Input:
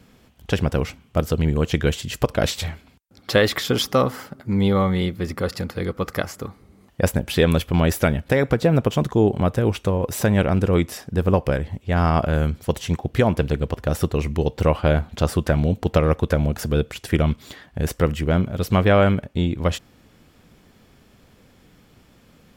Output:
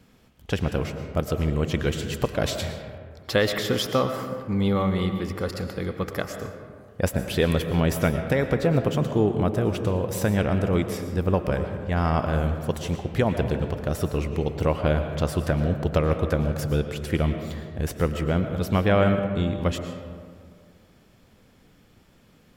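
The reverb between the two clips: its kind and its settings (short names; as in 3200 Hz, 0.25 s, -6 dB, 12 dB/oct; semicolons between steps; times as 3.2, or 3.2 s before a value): digital reverb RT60 2 s, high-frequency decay 0.4×, pre-delay 75 ms, DRR 7 dB; gain -4.5 dB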